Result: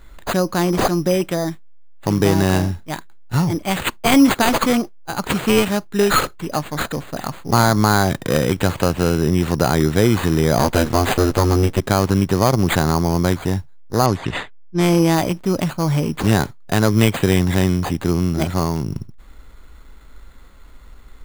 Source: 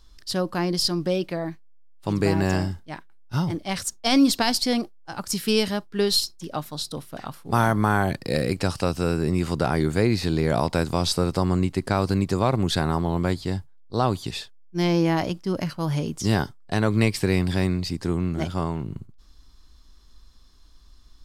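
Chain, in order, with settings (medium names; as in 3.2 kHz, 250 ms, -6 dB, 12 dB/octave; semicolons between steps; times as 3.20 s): 10.58–11.80 s: comb filter that takes the minimum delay 8.6 ms; in parallel at -2 dB: compression, threshold -31 dBFS, peak gain reduction 16 dB; on the sum: careless resampling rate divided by 8×, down none, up hold; 14.06–15.14 s: level-controlled noise filter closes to 1.9 kHz, open at -16.5 dBFS; trim +4.5 dB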